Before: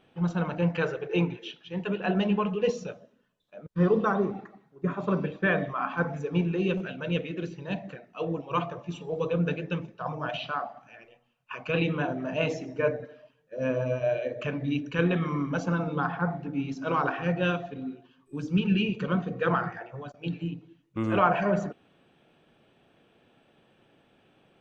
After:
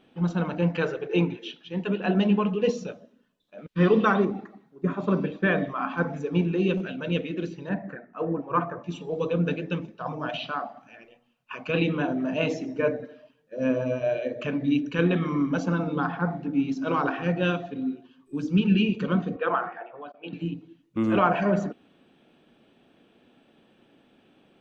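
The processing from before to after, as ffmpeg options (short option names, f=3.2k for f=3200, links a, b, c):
-filter_complex "[0:a]asettb=1/sr,asplit=3[a][b][c];[a]atrim=end=3.584[d];[b]atrim=start=3.58:end=4.25,asetpts=PTS-STARTPTS,afade=t=in:d=0.004:c=qsin,afade=t=out:st=0.666:d=0.004:c=qsin,equalizer=f=2.6k:w=0.85:g=12.5[e];[c]atrim=start=4.246[f];[d][e]acrossfade=d=0.004:c1=hsin:c2=qsin[g];[g][f]acrossfade=d=0.004:c1=qsin:c2=hsin,asettb=1/sr,asplit=3[h][i][j];[h]atrim=end=7.694[k];[i]atrim=start=7.69:end=8.84,asetpts=PTS-STARTPTS,afade=t=in:d=0.004:c=qsin,afade=t=out:st=1.146:d=0.004:c=qsin,highshelf=f=2.3k:t=q:w=3:g=-11.5[l];[j]atrim=start=8.836[m];[k][l]acrossfade=d=0.004:c1=hsin:c2=qsin[n];[n][m]acrossfade=d=0.004:c1=qsin:c2=hsin,asettb=1/sr,asplit=3[o][p][q];[o]atrim=end=19.364[r];[p]atrim=start=19.36:end=20.33,asetpts=PTS-STARTPTS,afade=t=in:d=0.004:c=qsin,afade=t=out:st=0.966:d=0.004:c=qsin,highpass=440,equalizer=f=700:t=q:w=4:g=4,equalizer=f=1.1k:t=q:w=4:g=3,equalizer=f=1.9k:t=q:w=4:g=-5,lowpass=f=3.1k:w=0.5412,lowpass=f=3.1k:w=1.3066[s];[q]atrim=start=20.326[t];[r][s]acrossfade=d=0.004:c1=hsin:c2=qsin[u];[u][t]acrossfade=d=0.004:c1=qsin:c2=hsin,equalizer=f=125:t=o:w=1:g=-4,equalizer=f=250:t=o:w=1:g=8,equalizer=f=4k:t=o:w=1:g=3"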